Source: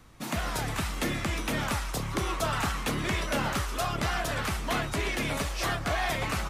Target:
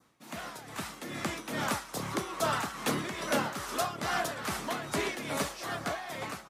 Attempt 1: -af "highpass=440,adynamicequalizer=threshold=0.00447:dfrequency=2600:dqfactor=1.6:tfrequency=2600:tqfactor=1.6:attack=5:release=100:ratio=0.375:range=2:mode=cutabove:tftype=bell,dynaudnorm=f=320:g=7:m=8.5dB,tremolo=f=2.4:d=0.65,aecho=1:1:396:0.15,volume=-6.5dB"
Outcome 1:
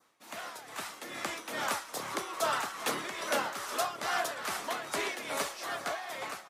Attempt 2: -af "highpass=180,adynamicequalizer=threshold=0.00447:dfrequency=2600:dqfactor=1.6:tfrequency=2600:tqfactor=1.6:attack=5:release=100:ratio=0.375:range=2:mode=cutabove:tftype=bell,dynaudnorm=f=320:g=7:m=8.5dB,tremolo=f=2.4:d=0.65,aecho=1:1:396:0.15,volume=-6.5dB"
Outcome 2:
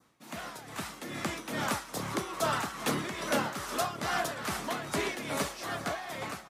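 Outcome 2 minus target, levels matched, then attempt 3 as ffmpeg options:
echo-to-direct +9 dB
-af "highpass=180,adynamicequalizer=threshold=0.00447:dfrequency=2600:dqfactor=1.6:tfrequency=2600:tqfactor=1.6:attack=5:release=100:ratio=0.375:range=2:mode=cutabove:tftype=bell,dynaudnorm=f=320:g=7:m=8.5dB,tremolo=f=2.4:d=0.65,aecho=1:1:396:0.0531,volume=-6.5dB"

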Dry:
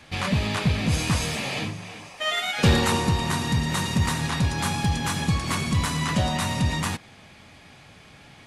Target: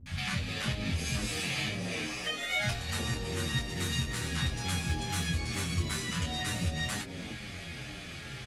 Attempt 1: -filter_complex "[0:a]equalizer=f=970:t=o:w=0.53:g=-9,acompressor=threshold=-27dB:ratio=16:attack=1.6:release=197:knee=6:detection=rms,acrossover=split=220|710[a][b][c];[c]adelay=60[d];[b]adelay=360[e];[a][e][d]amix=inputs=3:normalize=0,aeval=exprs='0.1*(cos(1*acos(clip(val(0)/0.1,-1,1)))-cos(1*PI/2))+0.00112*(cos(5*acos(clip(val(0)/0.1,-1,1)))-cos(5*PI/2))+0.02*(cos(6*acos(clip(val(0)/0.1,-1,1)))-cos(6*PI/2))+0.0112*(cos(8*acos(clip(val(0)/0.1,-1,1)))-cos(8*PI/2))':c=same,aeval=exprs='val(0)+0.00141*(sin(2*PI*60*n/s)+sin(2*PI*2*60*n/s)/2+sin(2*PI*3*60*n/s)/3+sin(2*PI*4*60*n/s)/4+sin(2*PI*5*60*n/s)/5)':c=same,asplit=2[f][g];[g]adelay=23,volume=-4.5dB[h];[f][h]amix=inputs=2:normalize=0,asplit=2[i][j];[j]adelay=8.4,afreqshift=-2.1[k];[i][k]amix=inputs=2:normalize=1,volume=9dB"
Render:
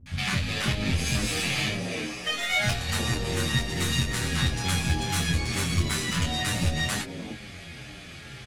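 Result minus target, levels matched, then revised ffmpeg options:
compressor: peak gain reduction -6 dB
-filter_complex "[0:a]equalizer=f=970:t=o:w=0.53:g=-9,acompressor=threshold=-33.5dB:ratio=16:attack=1.6:release=197:knee=6:detection=rms,acrossover=split=220|710[a][b][c];[c]adelay=60[d];[b]adelay=360[e];[a][e][d]amix=inputs=3:normalize=0,aeval=exprs='0.1*(cos(1*acos(clip(val(0)/0.1,-1,1)))-cos(1*PI/2))+0.00112*(cos(5*acos(clip(val(0)/0.1,-1,1)))-cos(5*PI/2))+0.02*(cos(6*acos(clip(val(0)/0.1,-1,1)))-cos(6*PI/2))+0.0112*(cos(8*acos(clip(val(0)/0.1,-1,1)))-cos(8*PI/2))':c=same,aeval=exprs='val(0)+0.00141*(sin(2*PI*60*n/s)+sin(2*PI*2*60*n/s)/2+sin(2*PI*3*60*n/s)/3+sin(2*PI*4*60*n/s)/4+sin(2*PI*5*60*n/s)/5)':c=same,asplit=2[f][g];[g]adelay=23,volume=-4.5dB[h];[f][h]amix=inputs=2:normalize=0,asplit=2[i][j];[j]adelay=8.4,afreqshift=-2.1[k];[i][k]amix=inputs=2:normalize=1,volume=9dB"

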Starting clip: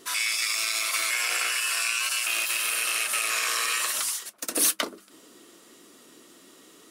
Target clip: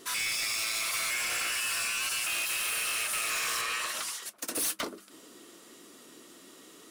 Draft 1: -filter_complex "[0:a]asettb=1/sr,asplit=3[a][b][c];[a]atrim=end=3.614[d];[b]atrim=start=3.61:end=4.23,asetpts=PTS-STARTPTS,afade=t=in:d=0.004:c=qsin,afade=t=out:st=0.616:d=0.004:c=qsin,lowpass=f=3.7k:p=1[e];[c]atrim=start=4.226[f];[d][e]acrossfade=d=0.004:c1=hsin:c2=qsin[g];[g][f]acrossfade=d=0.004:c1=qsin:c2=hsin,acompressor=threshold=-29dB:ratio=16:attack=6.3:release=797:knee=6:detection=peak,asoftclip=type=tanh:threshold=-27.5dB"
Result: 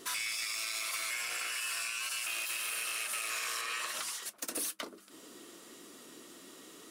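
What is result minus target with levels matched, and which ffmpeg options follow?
compressor: peak gain reduction +14.5 dB
-filter_complex "[0:a]asettb=1/sr,asplit=3[a][b][c];[a]atrim=end=3.614[d];[b]atrim=start=3.61:end=4.23,asetpts=PTS-STARTPTS,afade=t=in:d=0.004:c=qsin,afade=t=out:st=0.616:d=0.004:c=qsin,lowpass=f=3.7k:p=1[e];[c]atrim=start=4.226[f];[d][e]acrossfade=d=0.004:c1=hsin:c2=qsin[g];[g][f]acrossfade=d=0.004:c1=qsin:c2=hsin,asoftclip=type=tanh:threshold=-27.5dB"

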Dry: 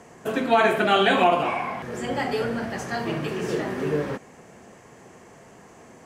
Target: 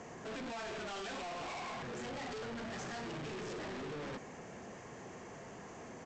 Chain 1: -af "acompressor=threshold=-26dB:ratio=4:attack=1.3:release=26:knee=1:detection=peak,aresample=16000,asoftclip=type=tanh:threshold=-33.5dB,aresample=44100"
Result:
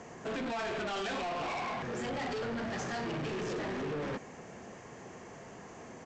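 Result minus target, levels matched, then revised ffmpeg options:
soft clip: distortion -4 dB
-af "acompressor=threshold=-26dB:ratio=4:attack=1.3:release=26:knee=1:detection=peak,aresample=16000,asoftclip=type=tanh:threshold=-41.5dB,aresample=44100"

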